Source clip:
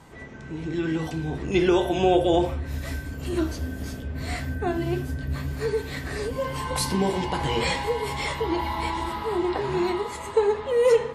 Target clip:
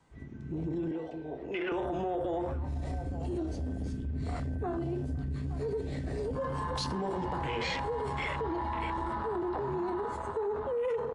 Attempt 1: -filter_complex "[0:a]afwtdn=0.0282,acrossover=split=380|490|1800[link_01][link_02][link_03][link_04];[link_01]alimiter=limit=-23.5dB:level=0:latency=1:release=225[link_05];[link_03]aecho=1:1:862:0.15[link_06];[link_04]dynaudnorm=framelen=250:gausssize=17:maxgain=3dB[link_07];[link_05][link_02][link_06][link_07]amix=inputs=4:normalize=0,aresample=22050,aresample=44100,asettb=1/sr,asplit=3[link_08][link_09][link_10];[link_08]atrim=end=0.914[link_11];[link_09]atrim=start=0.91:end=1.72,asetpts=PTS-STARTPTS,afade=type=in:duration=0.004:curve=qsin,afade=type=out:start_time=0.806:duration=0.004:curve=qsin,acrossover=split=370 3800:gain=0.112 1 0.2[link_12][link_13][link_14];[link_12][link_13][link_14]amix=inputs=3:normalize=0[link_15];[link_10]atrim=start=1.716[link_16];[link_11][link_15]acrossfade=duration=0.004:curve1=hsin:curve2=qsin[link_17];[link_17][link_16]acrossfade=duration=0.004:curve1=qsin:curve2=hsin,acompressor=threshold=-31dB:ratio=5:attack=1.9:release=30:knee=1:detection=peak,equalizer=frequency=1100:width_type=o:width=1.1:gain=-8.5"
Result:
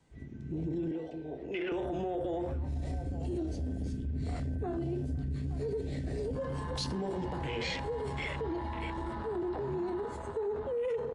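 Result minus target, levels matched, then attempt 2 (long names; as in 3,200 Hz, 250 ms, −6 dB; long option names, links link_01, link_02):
1,000 Hz band −5.0 dB
-filter_complex "[0:a]afwtdn=0.0282,acrossover=split=380|490|1800[link_01][link_02][link_03][link_04];[link_01]alimiter=limit=-23.5dB:level=0:latency=1:release=225[link_05];[link_03]aecho=1:1:862:0.15[link_06];[link_04]dynaudnorm=framelen=250:gausssize=17:maxgain=3dB[link_07];[link_05][link_02][link_06][link_07]amix=inputs=4:normalize=0,aresample=22050,aresample=44100,asettb=1/sr,asplit=3[link_08][link_09][link_10];[link_08]atrim=end=0.914[link_11];[link_09]atrim=start=0.91:end=1.72,asetpts=PTS-STARTPTS,afade=type=in:duration=0.004:curve=qsin,afade=type=out:start_time=0.806:duration=0.004:curve=qsin,acrossover=split=370 3800:gain=0.112 1 0.2[link_12][link_13][link_14];[link_12][link_13][link_14]amix=inputs=3:normalize=0[link_15];[link_10]atrim=start=1.716[link_16];[link_11][link_15]acrossfade=duration=0.004:curve1=hsin:curve2=qsin[link_17];[link_17][link_16]acrossfade=duration=0.004:curve1=qsin:curve2=hsin,acompressor=threshold=-31dB:ratio=5:attack=1.9:release=30:knee=1:detection=peak"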